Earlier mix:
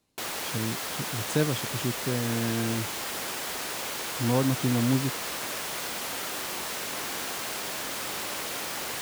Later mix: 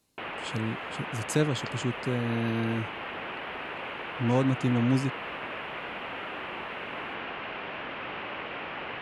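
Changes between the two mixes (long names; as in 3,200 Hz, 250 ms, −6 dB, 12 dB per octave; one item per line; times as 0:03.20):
background: add elliptic low-pass filter 2,800 Hz, stop band 80 dB
master: add high-shelf EQ 6,100 Hz +6.5 dB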